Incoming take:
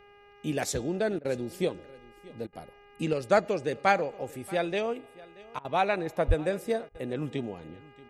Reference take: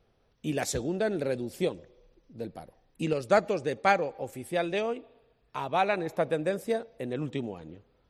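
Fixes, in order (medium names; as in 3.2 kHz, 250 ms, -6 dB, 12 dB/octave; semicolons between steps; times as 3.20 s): de-hum 407.5 Hz, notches 7; de-plosive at 6.27 s; interpolate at 1.19/2.47/5.59/6.89 s, 56 ms; inverse comb 631 ms -21.5 dB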